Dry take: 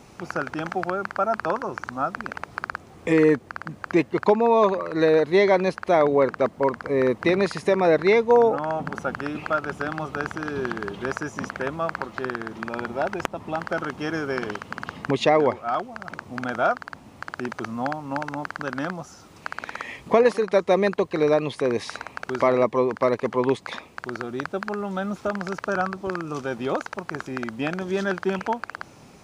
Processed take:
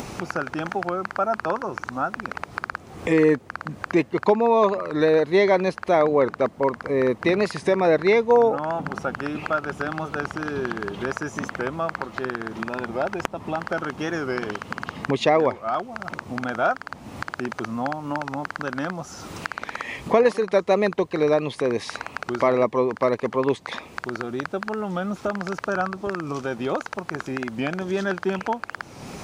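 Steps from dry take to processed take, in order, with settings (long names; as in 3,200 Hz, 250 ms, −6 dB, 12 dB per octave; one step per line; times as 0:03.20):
upward compression, threshold −23 dBFS
wow of a warped record 45 rpm, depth 100 cents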